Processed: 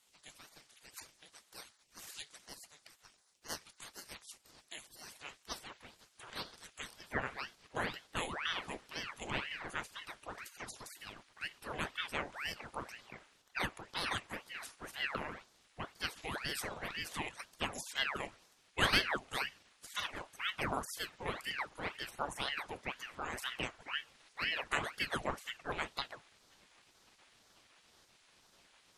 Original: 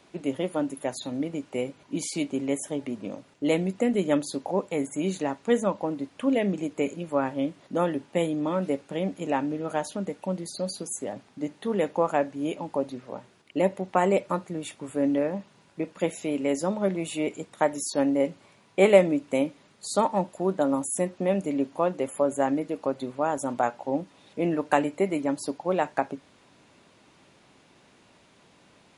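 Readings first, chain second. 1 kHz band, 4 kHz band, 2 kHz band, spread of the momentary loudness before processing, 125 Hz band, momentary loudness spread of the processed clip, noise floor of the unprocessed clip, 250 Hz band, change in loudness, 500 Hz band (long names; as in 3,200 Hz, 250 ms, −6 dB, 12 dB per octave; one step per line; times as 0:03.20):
−12.0 dB, +2.0 dB, −1.0 dB, 8 LU, −14.5 dB, 16 LU, −59 dBFS, −23.0 dB, −12.0 dB, −22.0 dB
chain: high-pass filter sweep 2,400 Hz → 280 Hz, 0:04.75–0:08.74
gate on every frequency bin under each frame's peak −15 dB weak
ring modulator whose carrier an LFO sweeps 1,300 Hz, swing 90%, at 2 Hz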